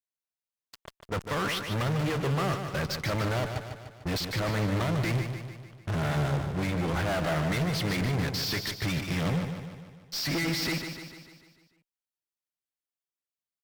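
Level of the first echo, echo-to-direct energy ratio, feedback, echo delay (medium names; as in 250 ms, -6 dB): -7.5 dB, -6.0 dB, 54%, 149 ms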